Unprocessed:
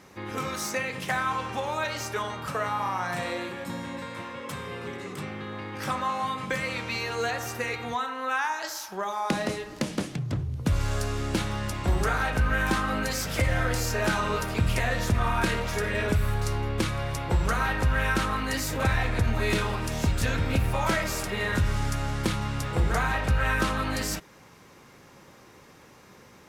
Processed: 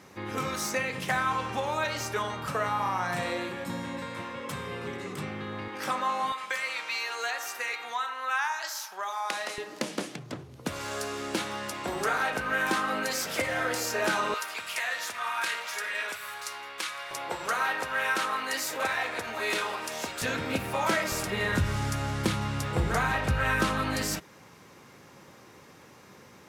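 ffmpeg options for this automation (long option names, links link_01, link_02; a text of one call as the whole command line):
ffmpeg -i in.wav -af "asetnsamples=nb_out_samples=441:pad=0,asendcmd='5.68 highpass f 270;6.32 highpass f 850;9.58 highpass f 300;14.34 highpass f 1100;17.11 highpass f 500;20.22 highpass f 220;21.12 highpass f 80',highpass=72" out.wav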